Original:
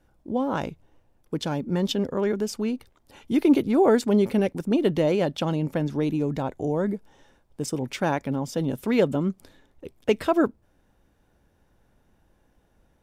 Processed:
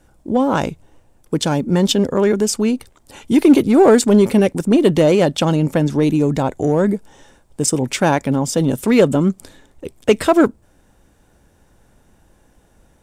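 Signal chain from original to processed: peaking EQ 8.1 kHz +9.5 dB 0.74 oct; in parallel at -5.5 dB: hard clipper -19.5 dBFS, distortion -10 dB; on the sum: trim +6 dB

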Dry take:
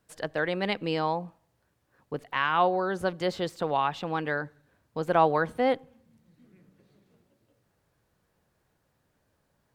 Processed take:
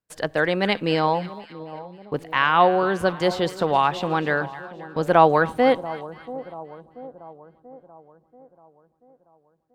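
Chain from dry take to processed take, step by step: gate -53 dBFS, range -24 dB; two-band feedback delay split 980 Hz, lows 685 ms, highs 264 ms, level -15.5 dB; trim +7 dB

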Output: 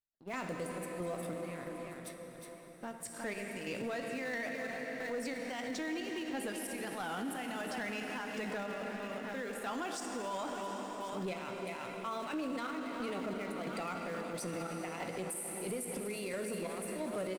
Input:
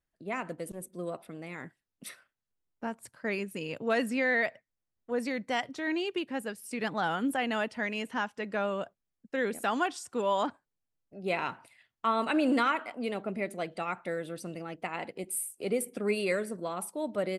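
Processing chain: doubling 16 ms -12 dB; feedback delay 362 ms, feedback 59%, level -15 dB; trance gate "....xxxx" 180 bpm -12 dB; compression, threshold -34 dBFS, peak gain reduction 12 dB; waveshaping leveller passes 2; in parallel at -11.5 dB: small samples zeroed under -33.5 dBFS; on the sum: dynamic bell 7.4 kHz, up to +5 dB, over -54 dBFS, Q 0.91; on a send at -5 dB: reverberation RT60 5.5 s, pre-delay 15 ms; on the sum: peak limiter -28 dBFS, peak gain reduction 12 dB; trim -3 dB

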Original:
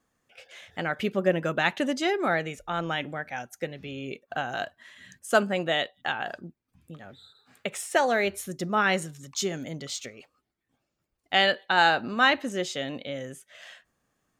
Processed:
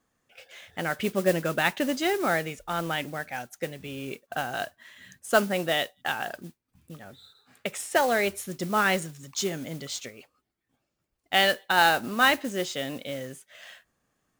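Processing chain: modulation noise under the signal 16 dB

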